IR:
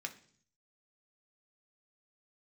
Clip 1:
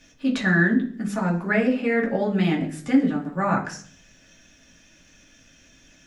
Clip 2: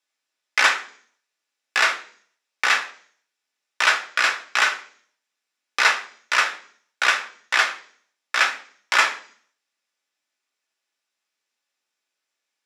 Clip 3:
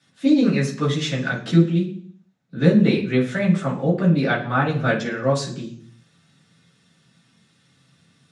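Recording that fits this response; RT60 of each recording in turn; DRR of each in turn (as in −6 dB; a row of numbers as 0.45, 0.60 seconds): 2; 0.50, 0.50, 0.50 seconds; −3.0, 4.0, −11.0 decibels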